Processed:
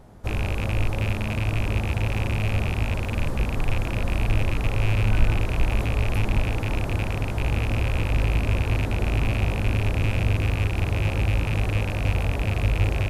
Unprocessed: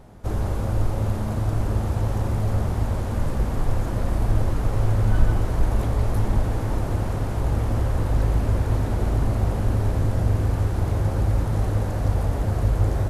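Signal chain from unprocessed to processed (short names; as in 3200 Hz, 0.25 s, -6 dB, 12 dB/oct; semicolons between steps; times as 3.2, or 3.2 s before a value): rattling part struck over -23 dBFS, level -18 dBFS; gain -1.5 dB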